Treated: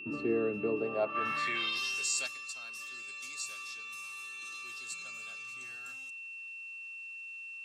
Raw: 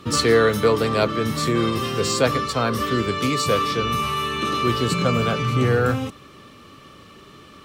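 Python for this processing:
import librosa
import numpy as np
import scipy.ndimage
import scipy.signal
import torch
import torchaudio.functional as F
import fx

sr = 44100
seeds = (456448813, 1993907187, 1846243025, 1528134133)

y = fx.notch_comb(x, sr, f0_hz=490.0)
y = fx.filter_sweep_bandpass(y, sr, from_hz=340.0, to_hz=7300.0, start_s=0.74, end_s=1.99, q=2.0)
y = y + 10.0 ** (-35.0 / 20.0) * np.sin(2.0 * np.pi * 2700.0 * np.arange(len(y)) / sr)
y = fx.env_flatten(y, sr, amount_pct=50, at=(1.14, 2.26), fade=0.02)
y = y * librosa.db_to_amplitude(-7.0)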